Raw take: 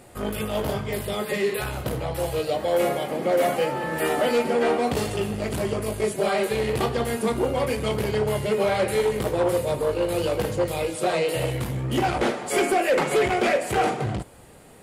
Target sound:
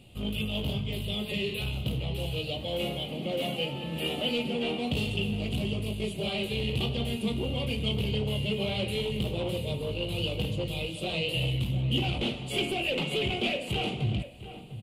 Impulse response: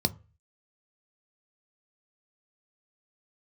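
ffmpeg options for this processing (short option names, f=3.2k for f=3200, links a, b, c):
-filter_complex "[0:a]firequalizer=gain_entry='entry(180,0);entry(350,-10);entry(940,-16);entry(1700,-23);entry(2800,7);entry(5500,-14);entry(13000,-11)':delay=0.05:min_phase=1,asplit=2[a][b];[b]adelay=699.7,volume=-12dB,highshelf=f=4k:g=-15.7[c];[a][c]amix=inputs=2:normalize=0"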